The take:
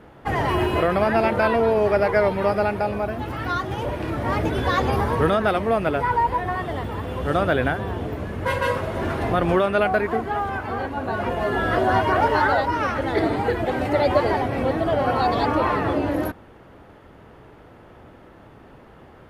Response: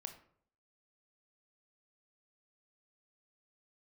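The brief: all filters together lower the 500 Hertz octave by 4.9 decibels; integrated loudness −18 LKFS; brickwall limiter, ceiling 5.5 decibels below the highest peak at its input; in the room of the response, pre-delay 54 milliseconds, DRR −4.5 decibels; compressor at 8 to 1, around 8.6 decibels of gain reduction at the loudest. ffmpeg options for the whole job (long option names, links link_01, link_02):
-filter_complex "[0:a]equalizer=frequency=500:width_type=o:gain=-6.5,acompressor=threshold=-26dB:ratio=8,alimiter=limit=-22.5dB:level=0:latency=1,asplit=2[link_01][link_02];[1:a]atrim=start_sample=2205,adelay=54[link_03];[link_02][link_03]afir=irnorm=-1:irlink=0,volume=8.5dB[link_04];[link_01][link_04]amix=inputs=2:normalize=0,volume=8dB"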